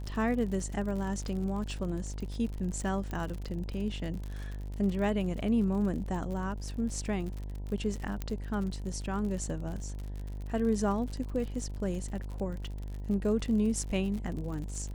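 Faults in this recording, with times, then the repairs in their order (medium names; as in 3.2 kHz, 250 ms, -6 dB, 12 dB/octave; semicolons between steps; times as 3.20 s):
buzz 50 Hz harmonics 20 -38 dBFS
crackle 57 per s -37 dBFS
3.11 s: pop -24 dBFS
8.22 s: pop -20 dBFS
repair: de-click; de-hum 50 Hz, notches 20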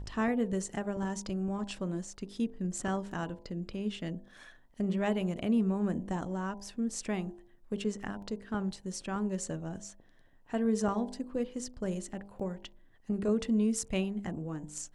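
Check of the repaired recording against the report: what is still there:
3.11 s: pop
8.22 s: pop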